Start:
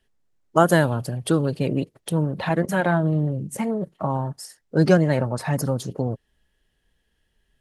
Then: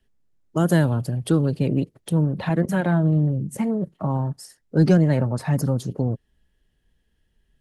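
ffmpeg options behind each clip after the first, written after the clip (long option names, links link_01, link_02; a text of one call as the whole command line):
ffmpeg -i in.wav -filter_complex "[0:a]acrossover=split=340|2100[link_01][link_02][link_03];[link_01]acontrast=81[link_04];[link_02]alimiter=limit=-15.5dB:level=0:latency=1[link_05];[link_04][link_05][link_03]amix=inputs=3:normalize=0,volume=-3.5dB" out.wav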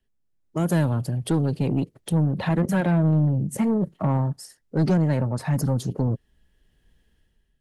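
ffmpeg -i in.wav -af "dynaudnorm=framelen=160:gausssize=7:maxgain=13dB,asoftclip=type=tanh:threshold=-7.5dB,volume=-7dB" out.wav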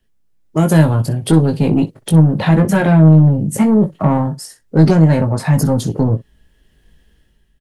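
ffmpeg -i in.wav -af "aecho=1:1:19|62:0.531|0.126,volume=9dB" out.wav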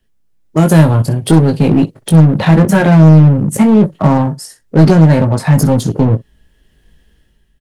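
ffmpeg -i in.wav -filter_complex "[0:a]asplit=2[link_01][link_02];[link_02]acrusher=bits=2:mix=0:aa=0.5,volume=-12dB[link_03];[link_01][link_03]amix=inputs=2:normalize=0,asoftclip=type=hard:threshold=-3.5dB,volume=2dB" out.wav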